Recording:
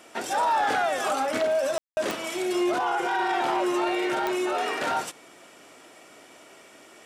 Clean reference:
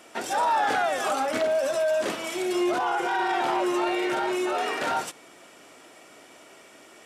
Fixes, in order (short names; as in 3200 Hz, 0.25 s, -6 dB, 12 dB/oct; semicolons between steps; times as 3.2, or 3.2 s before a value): clip repair -17.5 dBFS; de-click; room tone fill 1.78–1.97